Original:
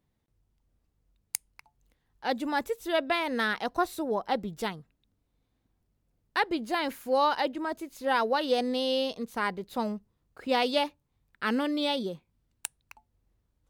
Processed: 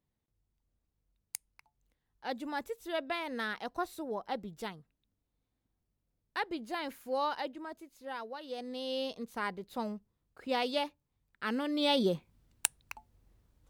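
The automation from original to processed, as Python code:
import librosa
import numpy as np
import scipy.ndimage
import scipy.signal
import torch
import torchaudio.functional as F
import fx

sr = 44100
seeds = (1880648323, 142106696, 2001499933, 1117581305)

y = fx.gain(x, sr, db=fx.line((7.3, -8.0), (8.39, -17.0), (9.06, -6.0), (11.64, -6.0), (12.11, 6.0)))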